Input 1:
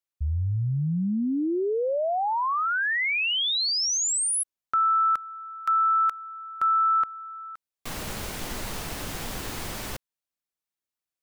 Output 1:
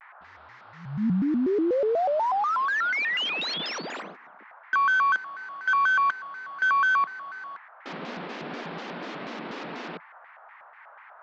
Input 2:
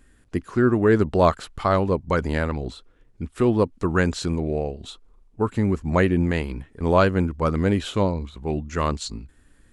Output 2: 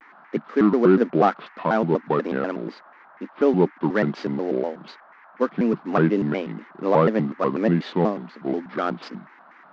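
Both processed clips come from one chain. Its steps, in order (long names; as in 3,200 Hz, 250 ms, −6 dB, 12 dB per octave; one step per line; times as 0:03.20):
variable-slope delta modulation 32 kbit/s
elliptic high-pass filter 190 Hz, stop band 40 dB
high-frequency loss of the air 300 metres
noise in a band 720–1,800 Hz −53 dBFS
pitch modulation by a square or saw wave square 4.1 Hz, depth 250 cents
level +3 dB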